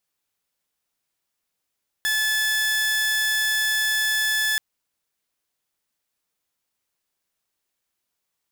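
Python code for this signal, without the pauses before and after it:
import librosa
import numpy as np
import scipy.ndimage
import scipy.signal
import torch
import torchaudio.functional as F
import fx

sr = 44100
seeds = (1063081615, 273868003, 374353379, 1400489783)

y = 10.0 ** (-17.5 / 20.0) * (2.0 * np.mod(1730.0 * (np.arange(round(2.53 * sr)) / sr), 1.0) - 1.0)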